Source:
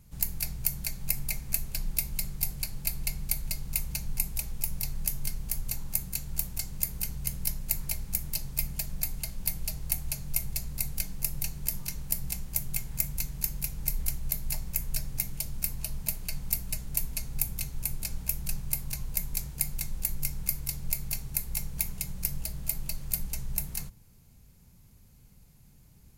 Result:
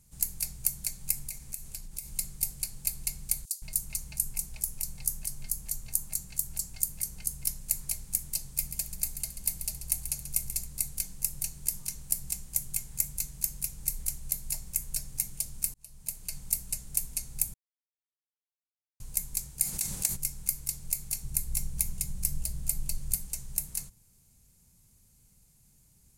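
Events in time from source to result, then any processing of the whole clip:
0:01.28–0:02.12: downward compressor 10 to 1, threshold −31 dBFS
0:03.45–0:07.44: multiband delay without the direct sound highs, lows 170 ms, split 3,900 Hz
0:08.49–0:10.67: repeating echo 136 ms, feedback 44%, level −11 dB
0:15.74–0:16.37: fade in
0:17.54–0:19.00: silence
0:19.62–0:20.15: ceiling on every frequency bin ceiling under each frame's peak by 20 dB
0:21.23–0:23.16: low-shelf EQ 190 Hz +10.5 dB
whole clip: parametric band 8,500 Hz +14 dB 1.3 octaves; level −8 dB

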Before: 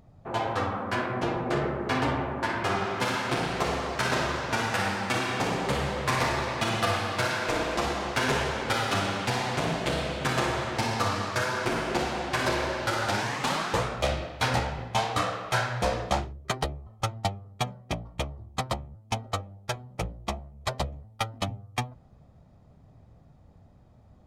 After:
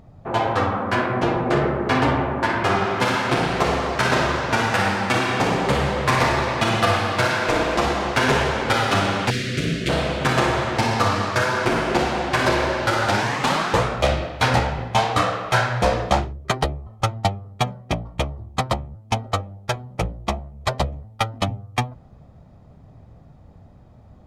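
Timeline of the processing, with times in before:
0:09.30–0:09.89: Butterworth band-reject 870 Hz, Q 0.62
whole clip: high-shelf EQ 4,500 Hz −5.5 dB; level +8 dB

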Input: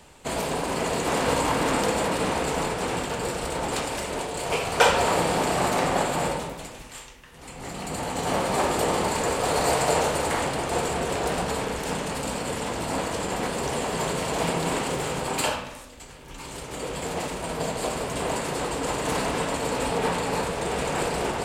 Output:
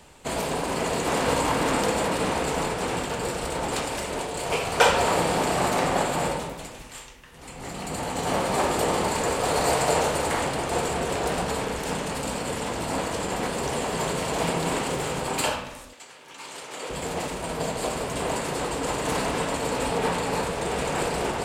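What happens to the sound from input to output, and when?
0:15.93–0:16.90: meter weighting curve A

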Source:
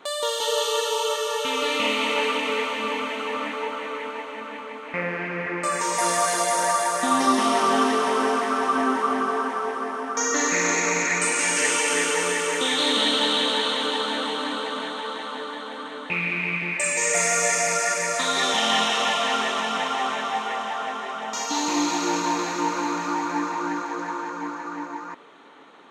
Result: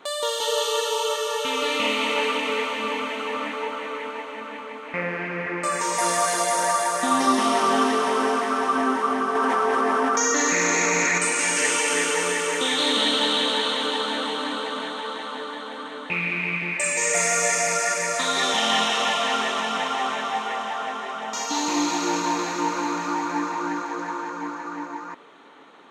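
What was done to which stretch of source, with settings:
0:09.35–0:11.18: envelope flattener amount 100%

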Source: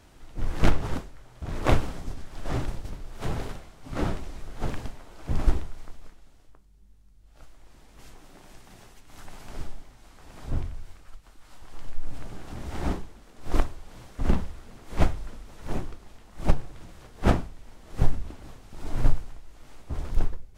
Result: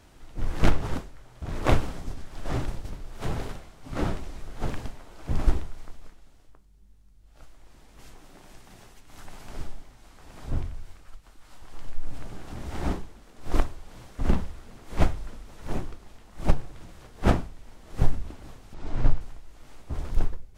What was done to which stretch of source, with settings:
0:18.74–0:19.21: high-frequency loss of the air 86 metres

